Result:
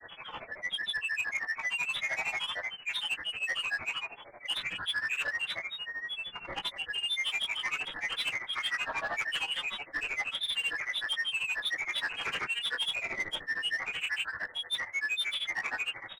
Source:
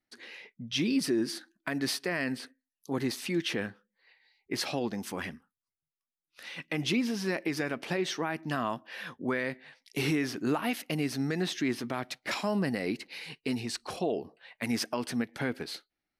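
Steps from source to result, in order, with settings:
linear delta modulator 32 kbit/s, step −48.5 dBFS
in parallel at −10 dB: bit-depth reduction 8 bits, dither none
on the sum: single-tap delay 307 ms −7.5 dB
convolution reverb, pre-delay 3 ms, DRR −6 dB
reversed playback
downward compressor 16 to 1, threshold −24 dBFS, peak gain reduction 17.5 dB
reversed playback
dynamic equaliser 1,300 Hz, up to +5 dB, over −51 dBFS, Q 3
voice inversion scrambler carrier 2,700 Hz
soft clipping −25.5 dBFS, distortion −13 dB
granular cloud, grains 13 per second, pitch spread up and down by 7 semitones
AAC 96 kbit/s 48,000 Hz

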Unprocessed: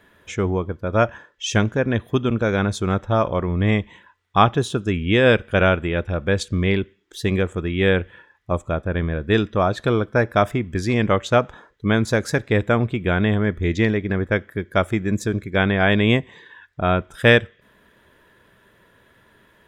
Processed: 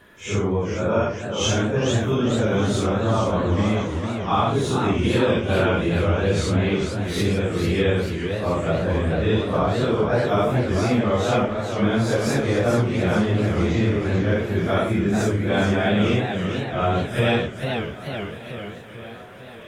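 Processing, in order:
random phases in long frames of 200 ms
dynamic equaliser 1,800 Hz, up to −6 dB, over −38 dBFS, Q 1.7
downward compressor 3 to 1, threshold −24 dBFS, peak gain reduction 10.5 dB
feedback echo with a high-pass in the loop 1,182 ms, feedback 64%, high-pass 270 Hz, level −18.5 dB
feedback echo with a swinging delay time 441 ms, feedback 60%, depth 203 cents, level −6.5 dB
level +4.5 dB

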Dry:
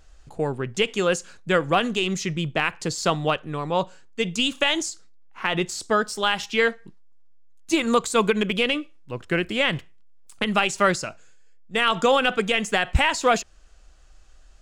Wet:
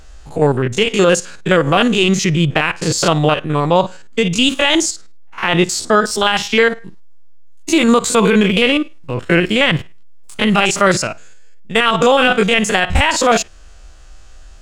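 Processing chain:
spectrum averaged block by block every 50 ms
boost into a limiter +14.5 dB
level −1 dB

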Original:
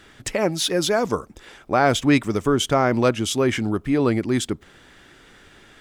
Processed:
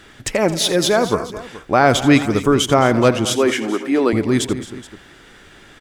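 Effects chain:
0:03.25–0:04.13: high-pass filter 260 Hz 24 dB per octave
on a send: multi-tap delay 84/218/257/425 ms −14.5/−15.5/−18.5/−18.5 dB
on the sum: level +4.5 dB

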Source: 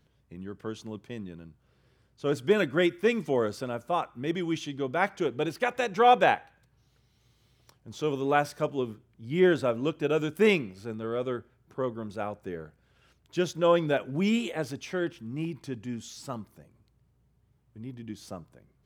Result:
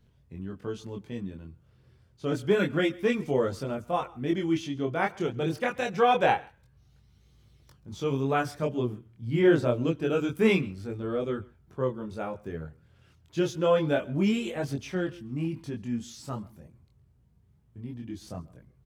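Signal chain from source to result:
on a send: single-tap delay 135 ms −23.5 dB
on the sum: multi-voice chorus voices 2, 0.27 Hz, delay 23 ms, depth 2.4 ms
low-shelf EQ 180 Hz +10 dB
level +1.5 dB

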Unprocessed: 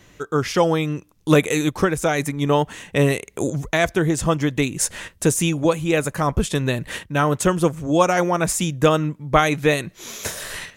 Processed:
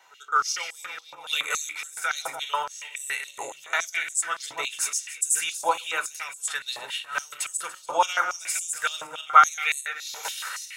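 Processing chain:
feedback delay that plays each chunk backwards 144 ms, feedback 45%, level −8 dB
backwards echo 90 ms −21 dB
convolution reverb RT60 0.25 s, pre-delay 3 ms, DRR 9.5 dB
high-pass on a step sequencer 7.1 Hz 890–7,900 Hz
level −8.5 dB

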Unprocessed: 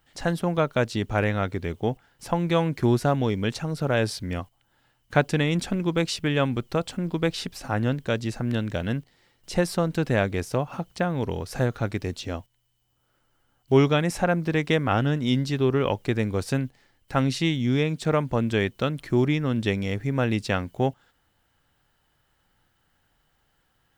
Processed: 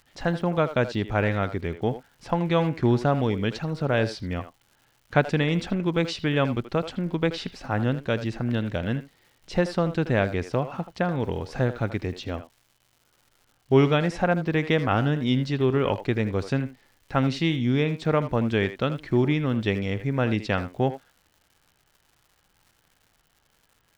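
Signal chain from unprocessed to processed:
low-pass filter 4,400 Hz 12 dB per octave
surface crackle 250 per second −48 dBFS
far-end echo of a speakerphone 80 ms, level −11 dB

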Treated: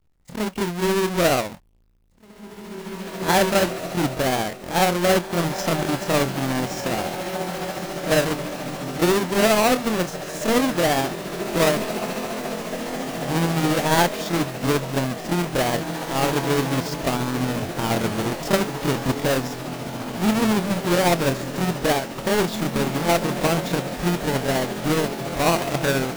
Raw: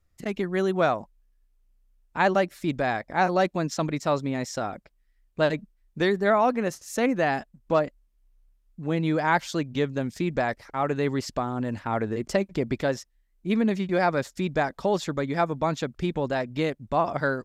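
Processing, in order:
each half-wave held at its own peak
feedback delay with all-pass diffusion 1,655 ms, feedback 54%, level −7.5 dB
time stretch by overlap-add 1.5×, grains 140 ms

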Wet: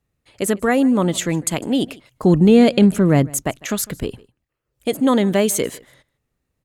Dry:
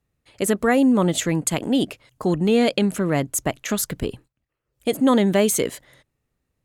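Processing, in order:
0:02.23–0:03.30: low-shelf EQ 400 Hz +9.5 dB
on a send: single-tap delay 152 ms −23 dB
on the sum: level +1 dB

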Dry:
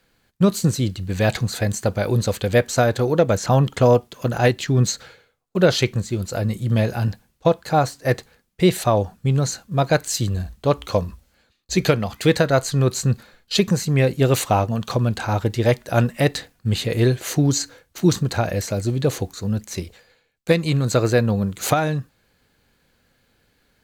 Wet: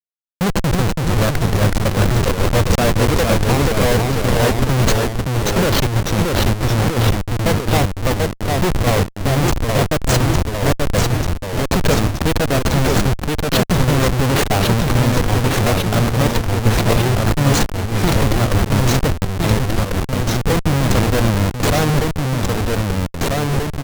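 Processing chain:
single-tap delay 1,172 ms −24 dB
comparator with hysteresis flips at −20 dBFS
delay with pitch and tempo change per echo 293 ms, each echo −1 semitone, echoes 3
level +5.5 dB

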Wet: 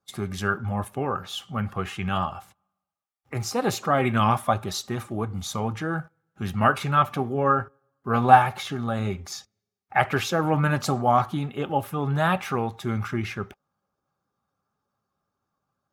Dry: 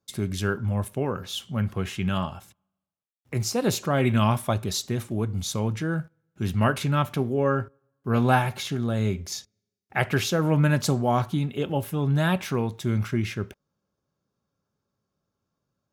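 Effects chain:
spectral magnitudes quantised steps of 15 dB
parametric band 1,200 Hz +7.5 dB 2.1 octaves
hollow resonant body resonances 790/1,200 Hz, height 10 dB, ringing for 45 ms
level −3 dB

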